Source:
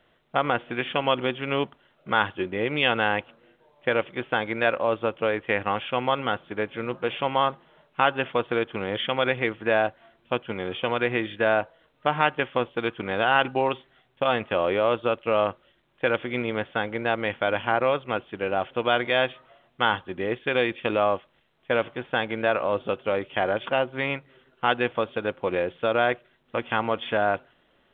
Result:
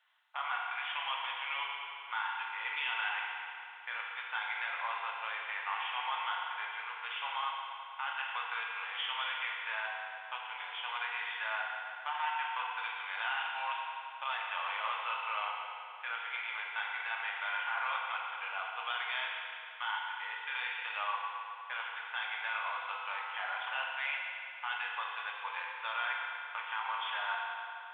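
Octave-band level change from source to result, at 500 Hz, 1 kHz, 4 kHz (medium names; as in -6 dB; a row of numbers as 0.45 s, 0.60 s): -29.0 dB, -9.0 dB, no reading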